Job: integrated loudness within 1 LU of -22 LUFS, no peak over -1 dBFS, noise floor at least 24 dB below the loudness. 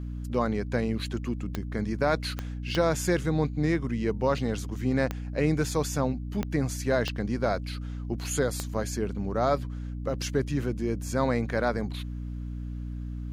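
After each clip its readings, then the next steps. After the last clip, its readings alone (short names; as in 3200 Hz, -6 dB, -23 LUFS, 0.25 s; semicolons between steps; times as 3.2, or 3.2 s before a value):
clicks 7; hum 60 Hz; harmonics up to 300 Hz; hum level -32 dBFS; loudness -29.5 LUFS; peak -12.0 dBFS; loudness target -22.0 LUFS
-> de-click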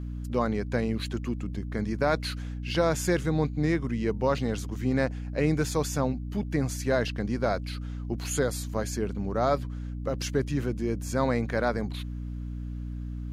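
clicks 0; hum 60 Hz; harmonics up to 300 Hz; hum level -32 dBFS
-> de-hum 60 Hz, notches 5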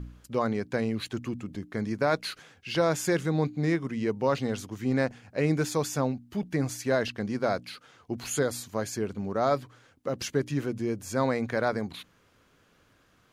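hum none; loudness -29.5 LUFS; peak -13.0 dBFS; loudness target -22.0 LUFS
-> gain +7.5 dB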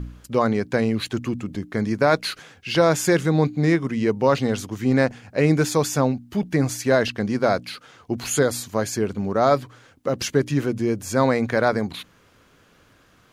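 loudness -22.0 LUFS; peak -5.5 dBFS; noise floor -57 dBFS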